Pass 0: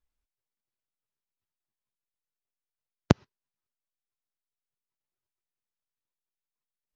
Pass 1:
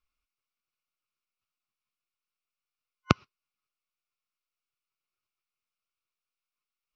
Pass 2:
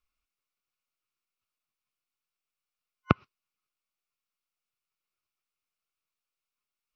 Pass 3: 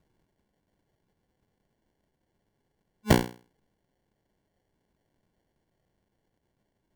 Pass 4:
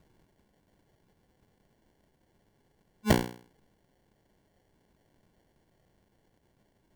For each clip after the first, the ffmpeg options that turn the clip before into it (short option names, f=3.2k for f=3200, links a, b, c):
-af "superequalizer=10b=3.98:12b=3.98:13b=2:14b=2.24,volume=-3.5dB"
-filter_complex "[0:a]acrossover=split=2900[a][b];[b]acompressor=threshold=-59dB:ratio=4:attack=1:release=60[c];[a][c]amix=inputs=2:normalize=0"
-filter_complex "[0:a]bandreject=f=60:t=h:w=6,bandreject=f=120:t=h:w=6,bandreject=f=180:t=h:w=6,bandreject=f=240:t=h:w=6,bandreject=f=300:t=h:w=6,bandreject=f=360:t=h:w=6,bandreject=f=420:t=h:w=6,bandreject=f=480:t=h:w=6,bandreject=f=540:t=h:w=6,asplit=2[a][b];[b]highpass=f=720:p=1,volume=31dB,asoftclip=type=tanh:threshold=-2dB[c];[a][c]amix=inputs=2:normalize=0,lowpass=f=1.2k:p=1,volume=-6dB,acrusher=samples=35:mix=1:aa=0.000001"
-af "acompressor=threshold=-35dB:ratio=2,volume=7dB"